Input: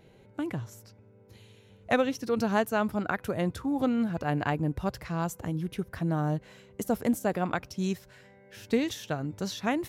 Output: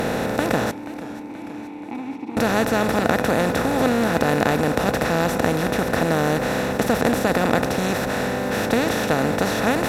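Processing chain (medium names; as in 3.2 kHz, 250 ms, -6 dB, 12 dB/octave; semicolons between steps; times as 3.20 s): spectral levelling over time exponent 0.2; 0.71–2.37 s: vowel filter u; modulated delay 481 ms, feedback 63%, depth 72 cents, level -16 dB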